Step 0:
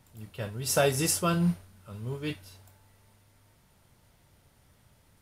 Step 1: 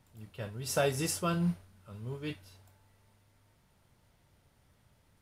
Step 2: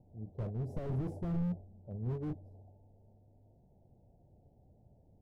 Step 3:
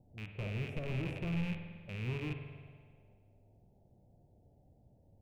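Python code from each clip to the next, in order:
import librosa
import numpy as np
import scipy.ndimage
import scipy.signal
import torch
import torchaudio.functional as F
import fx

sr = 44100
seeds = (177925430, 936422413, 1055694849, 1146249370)

y1 = fx.high_shelf(x, sr, hz=6800.0, db=-5.0)
y1 = y1 * 10.0 ** (-4.5 / 20.0)
y2 = scipy.signal.sosfilt(scipy.signal.ellip(4, 1.0, 40, 760.0, 'lowpass', fs=sr, output='sos'), y1)
y2 = fx.slew_limit(y2, sr, full_power_hz=2.6)
y2 = y2 * 10.0 ** (5.0 / 20.0)
y3 = fx.rattle_buzz(y2, sr, strikes_db=-42.0, level_db=-33.0)
y3 = fx.rev_spring(y3, sr, rt60_s=1.6, pass_ms=(48,), chirp_ms=75, drr_db=5.5)
y3 = y3 * 10.0 ** (-2.0 / 20.0)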